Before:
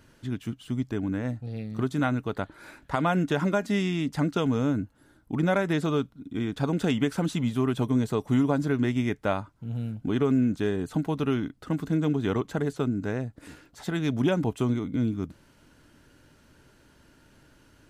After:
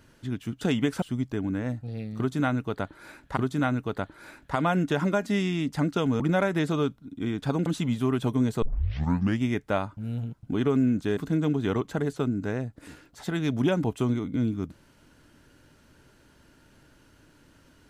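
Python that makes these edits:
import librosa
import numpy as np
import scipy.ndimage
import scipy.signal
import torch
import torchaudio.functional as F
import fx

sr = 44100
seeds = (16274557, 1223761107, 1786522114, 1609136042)

y = fx.edit(x, sr, fx.repeat(start_s=1.77, length_s=1.19, count=2),
    fx.cut(start_s=4.6, length_s=0.74),
    fx.move(start_s=6.8, length_s=0.41, to_s=0.61),
    fx.tape_start(start_s=8.17, length_s=0.79),
    fx.reverse_span(start_s=9.52, length_s=0.46),
    fx.cut(start_s=10.72, length_s=1.05), tone=tone)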